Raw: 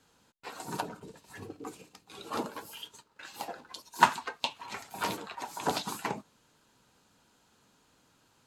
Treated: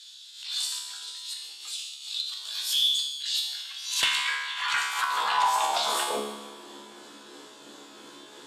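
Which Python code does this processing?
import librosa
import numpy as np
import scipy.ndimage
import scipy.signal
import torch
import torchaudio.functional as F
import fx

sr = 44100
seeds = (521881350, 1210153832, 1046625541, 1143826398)

p1 = fx.pitch_heads(x, sr, semitones=1.0)
p2 = scipy.signal.sosfilt(scipy.signal.butter(4, 11000.0, 'lowpass', fs=sr, output='sos'), p1)
p3 = fx.peak_eq(p2, sr, hz=3500.0, db=9.0, octaves=0.26)
p4 = fx.over_compress(p3, sr, threshold_db=-45.0, ratio=-1.0)
p5 = p3 + F.gain(torch.from_numpy(p4), 2.0).numpy()
p6 = fx.auto_swell(p5, sr, attack_ms=145.0)
p7 = fx.comb_fb(p6, sr, f0_hz=71.0, decay_s=0.97, harmonics='all', damping=0.0, mix_pct=90)
p8 = fx.filter_sweep_highpass(p7, sr, from_hz=3900.0, to_hz=330.0, start_s=3.54, end_s=6.68, q=2.7)
p9 = fx.cheby_harmonics(p8, sr, harmonics=(2,), levels_db=(-26,), full_scale_db=-24.5)
p10 = fx.fold_sine(p9, sr, drive_db=7, ceiling_db=-24.0)
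p11 = p10 + fx.echo_feedback(p10, sr, ms=154, feedback_pct=52, wet_db=-16.5, dry=0)
p12 = fx.rev_spring(p11, sr, rt60_s=3.6, pass_ms=(52,), chirp_ms=55, drr_db=17.5)
p13 = fx.pre_swell(p12, sr, db_per_s=78.0)
y = F.gain(torch.from_numpy(p13), 7.5).numpy()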